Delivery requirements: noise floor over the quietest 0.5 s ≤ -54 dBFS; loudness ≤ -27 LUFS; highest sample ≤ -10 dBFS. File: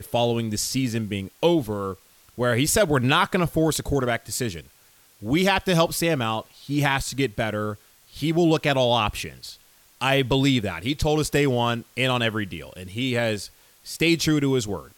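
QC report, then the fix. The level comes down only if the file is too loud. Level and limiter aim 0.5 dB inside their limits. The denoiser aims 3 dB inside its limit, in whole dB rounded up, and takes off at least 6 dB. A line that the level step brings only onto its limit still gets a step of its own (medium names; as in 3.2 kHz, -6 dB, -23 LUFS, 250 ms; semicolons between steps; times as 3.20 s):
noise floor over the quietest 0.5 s -56 dBFS: pass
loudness -23.0 LUFS: fail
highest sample -6.0 dBFS: fail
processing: trim -4.5 dB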